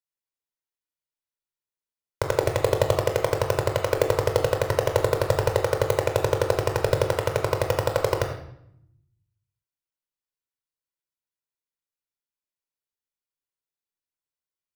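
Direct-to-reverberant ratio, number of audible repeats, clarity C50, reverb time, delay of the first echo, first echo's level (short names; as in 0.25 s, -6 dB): 3.0 dB, none, 6.0 dB, 0.75 s, none, none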